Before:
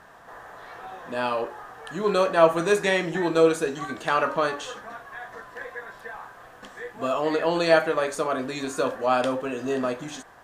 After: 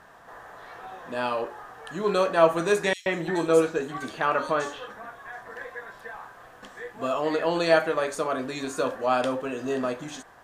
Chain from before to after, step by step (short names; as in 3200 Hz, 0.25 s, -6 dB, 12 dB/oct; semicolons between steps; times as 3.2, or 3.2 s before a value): 2.93–5.56 bands offset in time highs, lows 0.13 s, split 3700 Hz; gain -1.5 dB